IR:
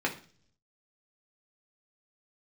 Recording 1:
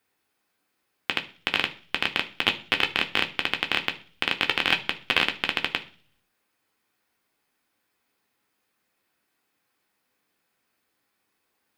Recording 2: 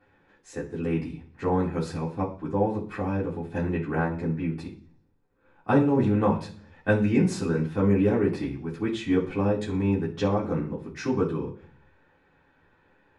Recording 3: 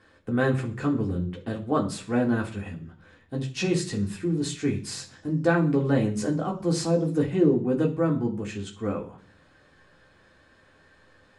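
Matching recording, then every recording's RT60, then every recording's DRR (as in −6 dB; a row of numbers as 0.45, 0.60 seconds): 3; 0.45, 0.45, 0.45 seconds; 4.0, −9.5, −1.5 decibels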